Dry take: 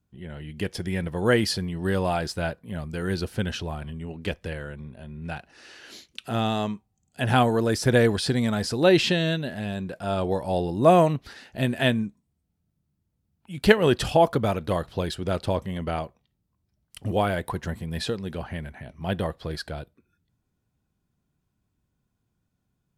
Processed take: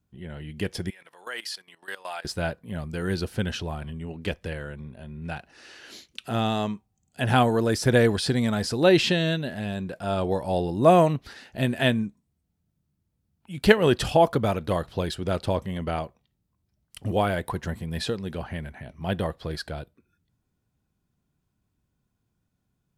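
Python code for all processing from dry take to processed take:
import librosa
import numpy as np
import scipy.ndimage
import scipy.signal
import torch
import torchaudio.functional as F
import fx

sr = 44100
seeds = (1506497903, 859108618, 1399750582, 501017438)

y = fx.chain(x, sr, fx.highpass(hz=1000.0, slope=12),
    fx.level_steps(step_db=17), at=(0.9, 2.25))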